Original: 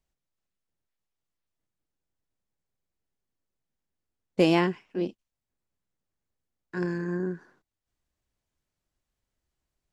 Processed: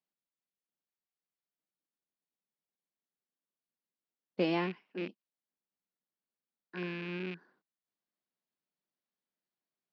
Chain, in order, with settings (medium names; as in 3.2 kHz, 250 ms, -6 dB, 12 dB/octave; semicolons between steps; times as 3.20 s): rattle on loud lows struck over -37 dBFS, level -24 dBFS; elliptic band-pass 180–4600 Hz; trim -8.5 dB